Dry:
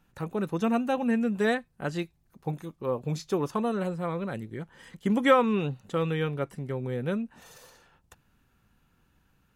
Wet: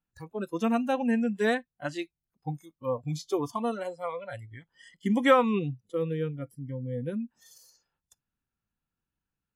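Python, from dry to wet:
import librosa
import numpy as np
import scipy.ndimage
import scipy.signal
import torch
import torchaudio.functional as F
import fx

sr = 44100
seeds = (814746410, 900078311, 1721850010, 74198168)

y = fx.noise_reduce_blind(x, sr, reduce_db=22)
y = fx.spec_box(y, sr, start_s=5.59, length_s=1.61, low_hz=520.0, high_hz=9500.0, gain_db=-11)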